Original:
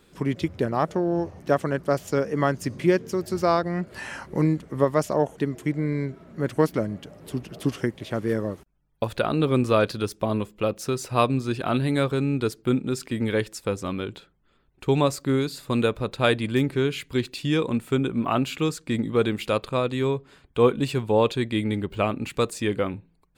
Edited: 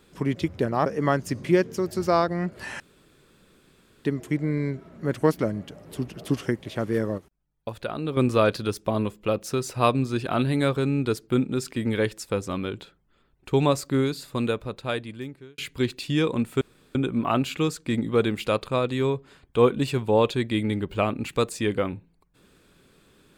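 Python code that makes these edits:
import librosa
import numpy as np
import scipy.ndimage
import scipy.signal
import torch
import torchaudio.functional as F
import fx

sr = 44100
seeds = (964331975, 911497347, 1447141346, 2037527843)

y = fx.edit(x, sr, fx.cut(start_s=0.86, length_s=1.35),
    fx.room_tone_fill(start_s=4.15, length_s=1.25),
    fx.clip_gain(start_s=8.53, length_s=0.99, db=-7.0),
    fx.fade_out_span(start_s=15.33, length_s=1.6),
    fx.insert_room_tone(at_s=17.96, length_s=0.34), tone=tone)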